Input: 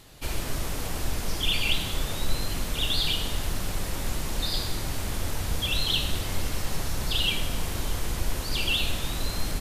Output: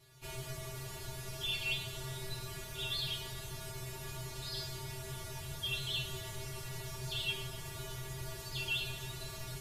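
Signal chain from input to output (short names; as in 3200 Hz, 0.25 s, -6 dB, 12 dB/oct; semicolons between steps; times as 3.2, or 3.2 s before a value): resonator 130 Hz, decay 0.21 s, harmonics odd, mix 100%; gain +1 dB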